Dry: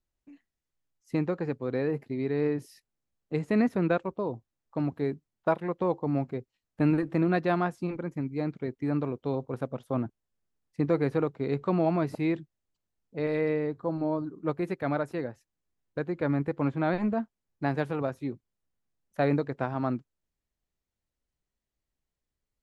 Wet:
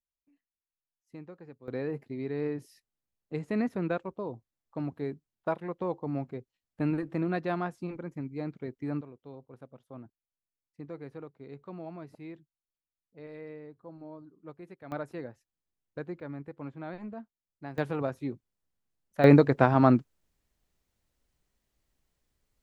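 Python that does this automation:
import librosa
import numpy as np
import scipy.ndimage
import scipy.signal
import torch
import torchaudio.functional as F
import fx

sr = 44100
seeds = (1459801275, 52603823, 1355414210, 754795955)

y = fx.gain(x, sr, db=fx.steps((0.0, -17.5), (1.68, -5.0), (9.01, -16.5), (14.92, -6.5), (16.2, -13.0), (17.78, -1.0), (19.24, 9.0)))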